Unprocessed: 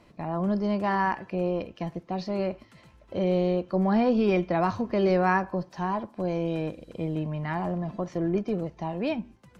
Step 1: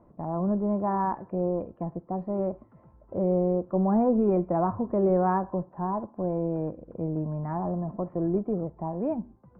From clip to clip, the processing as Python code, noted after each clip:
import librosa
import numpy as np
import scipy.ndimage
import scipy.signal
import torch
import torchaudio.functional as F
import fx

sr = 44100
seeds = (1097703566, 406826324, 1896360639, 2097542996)

y = scipy.signal.sosfilt(scipy.signal.butter(4, 1100.0, 'lowpass', fs=sr, output='sos'), x)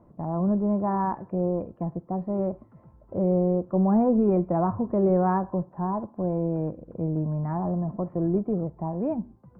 y = fx.peak_eq(x, sr, hz=130.0, db=4.5, octaves=1.7)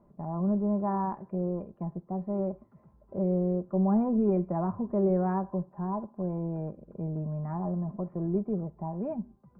y = x + 0.45 * np.pad(x, (int(5.0 * sr / 1000.0), 0))[:len(x)]
y = y * 10.0 ** (-6.5 / 20.0)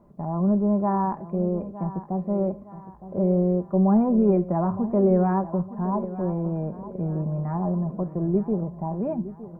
y = fx.echo_feedback(x, sr, ms=913, feedback_pct=42, wet_db=-14.5)
y = y * 10.0 ** (6.0 / 20.0)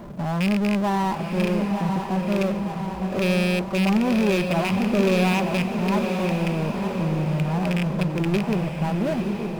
y = fx.rattle_buzz(x, sr, strikes_db=-23.0, level_db=-15.0)
y = fx.power_curve(y, sr, exponent=0.5)
y = fx.echo_diffused(y, sr, ms=939, feedback_pct=42, wet_db=-6.5)
y = y * 10.0 ** (-6.0 / 20.0)